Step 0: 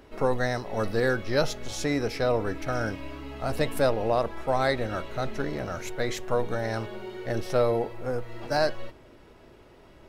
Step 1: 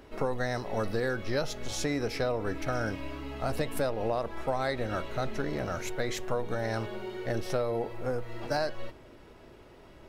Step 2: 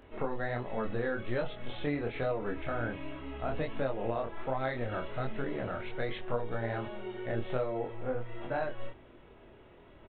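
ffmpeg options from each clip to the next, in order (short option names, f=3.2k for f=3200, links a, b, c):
-af "acompressor=threshold=-26dB:ratio=6"
-af "aresample=8000,aresample=44100,flanger=delay=22.5:depth=4.7:speed=1.3"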